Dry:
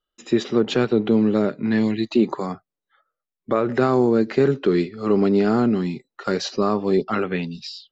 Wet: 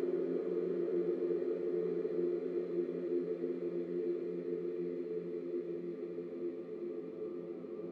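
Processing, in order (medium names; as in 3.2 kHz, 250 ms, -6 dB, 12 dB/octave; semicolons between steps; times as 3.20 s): band-pass sweep 1.4 kHz -> 260 Hz, 3.66–5.64 s; hysteresis with a dead band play -48.5 dBFS; Paulstretch 43×, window 0.50 s, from 4.74 s; trim -8.5 dB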